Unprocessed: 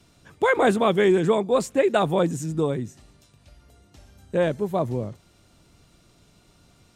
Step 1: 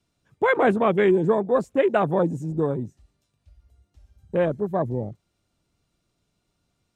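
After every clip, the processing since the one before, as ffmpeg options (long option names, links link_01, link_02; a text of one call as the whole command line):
ffmpeg -i in.wav -af "afwtdn=0.0251" out.wav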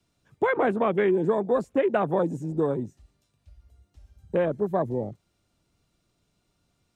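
ffmpeg -i in.wav -filter_complex "[0:a]acrossover=split=220|3100[link_01][link_02][link_03];[link_01]acompressor=threshold=-38dB:ratio=4[link_04];[link_02]acompressor=threshold=-22dB:ratio=4[link_05];[link_03]acompressor=threshold=-57dB:ratio=4[link_06];[link_04][link_05][link_06]amix=inputs=3:normalize=0,volume=1.5dB" out.wav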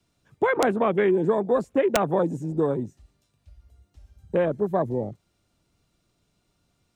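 ffmpeg -i in.wav -af "aeval=exprs='(mod(3.98*val(0)+1,2)-1)/3.98':channel_layout=same,volume=1.5dB" out.wav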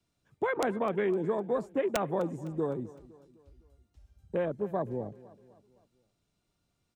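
ffmpeg -i in.wav -af "aecho=1:1:255|510|765|1020:0.112|0.0539|0.0259|0.0124,volume=-8dB" out.wav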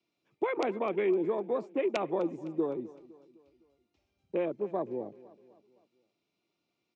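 ffmpeg -i in.wav -af "highpass=240,equalizer=frequency=340:width_type=q:width=4:gain=7,equalizer=frequency=1600:width_type=q:width=4:gain=-8,equalizer=frequency=2400:width_type=q:width=4:gain=8,lowpass=frequency=5700:width=0.5412,lowpass=frequency=5700:width=1.3066,volume=-1.5dB" out.wav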